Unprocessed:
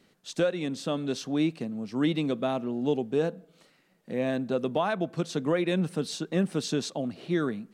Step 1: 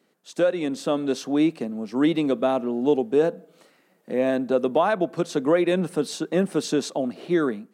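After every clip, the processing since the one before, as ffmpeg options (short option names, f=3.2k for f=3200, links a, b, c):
-af "highpass=260,equalizer=f=3.9k:w=0.5:g=-6.5,dynaudnorm=f=260:g=3:m=8dB"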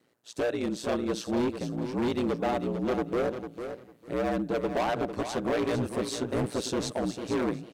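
-af "aeval=exprs='val(0)*sin(2*PI*59*n/s)':c=same,volume=24dB,asoftclip=hard,volume=-24dB,aecho=1:1:450|900|1350:0.355|0.0639|0.0115"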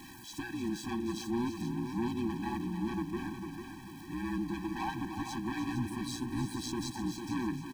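-af "aeval=exprs='val(0)+0.5*0.0158*sgn(val(0))':c=same,aecho=1:1:303:0.316,afftfilt=real='re*eq(mod(floor(b*sr/1024/380),2),0)':imag='im*eq(mod(floor(b*sr/1024/380),2),0)':win_size=1024:overlap=0.75,volume=-5dB"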